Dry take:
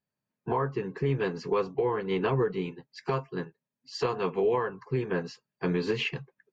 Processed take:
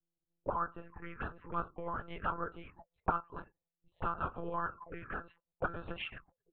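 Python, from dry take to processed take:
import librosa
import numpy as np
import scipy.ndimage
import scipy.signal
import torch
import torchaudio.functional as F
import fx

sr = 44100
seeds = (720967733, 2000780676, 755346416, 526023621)

p1 = fx.rider(x, sr, range_db=3, speed_s=2.0)
p2 = x + (p1 * 10.0 ** (-1.5 / 20.0))
p3 = fx.notch(p2, sr, hz=1500.0, q=5.3)
p4 = fx.auto_wah(p3, sr, base_hz=260.0, top_hz=1400.0, q=18.0, full_db=-23.5, direction='up')
p5 = fx.lpc_monotone(p4, sr, seeds[0], pitch_hz=170.0, order=10)
p6 = fx.dynamic_eq(p5, sr, hz=1500.0, q=7.0, threshold_db=-58.0, ratio=4.0, max_db=5)
p7 = fx.env_phaser(p6, sr, low_hz=240.0, high_hz=2100.0, full_db=-47.5)
y = p7 * 10.0 ** (14.0 / 20.0)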